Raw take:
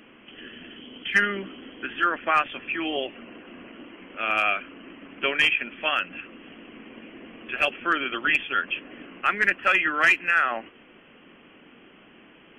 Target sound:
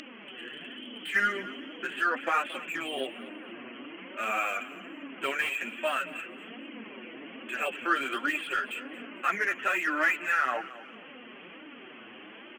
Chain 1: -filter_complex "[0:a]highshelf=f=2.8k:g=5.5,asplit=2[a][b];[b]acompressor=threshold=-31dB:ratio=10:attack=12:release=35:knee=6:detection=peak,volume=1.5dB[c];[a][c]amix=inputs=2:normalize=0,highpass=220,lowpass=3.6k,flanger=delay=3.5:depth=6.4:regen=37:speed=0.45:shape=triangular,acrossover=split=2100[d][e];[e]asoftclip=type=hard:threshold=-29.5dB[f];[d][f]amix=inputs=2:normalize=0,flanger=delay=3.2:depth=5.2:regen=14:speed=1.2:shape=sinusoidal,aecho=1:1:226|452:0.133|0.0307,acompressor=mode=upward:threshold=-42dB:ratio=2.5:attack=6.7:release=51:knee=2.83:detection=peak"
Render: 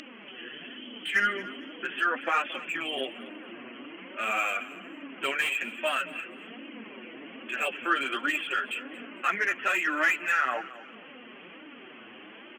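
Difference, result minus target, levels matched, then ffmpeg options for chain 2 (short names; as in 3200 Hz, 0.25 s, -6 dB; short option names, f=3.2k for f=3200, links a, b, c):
hard clip: distortion -4 dB
-filter_complex "[0:a]highshelf=f=2.8k:g=5.5,asplit=2[a][b];[b]acompressor=threshold=-31dB:ratio=10:attack=12:release=35:knee=6:detection=peak,volume=1.5dB[c];[a][c]amix=inputs=2:normalize=0,highpass=220,lowpass=3.6k,flanger=delay=3.5:depth=6.4:regen=37:speed=0.45:shape=triangular,acrossover=split=2100[d][e];[e]asoftclip=type=hard:threshold=-37.5dB[f];[d][f]amix=inputs=2:normalize=0,flanger=delay=3.2:depth=5.2:regen=14:speed=1.2:shape=sinusoidal,aecho=1:1:226|452:0.133|0.0307,acompressor=mode=upward:threshold=-42dB:ratio=2.5:attack=6.7:release=51:knee=2.83:detection=peak"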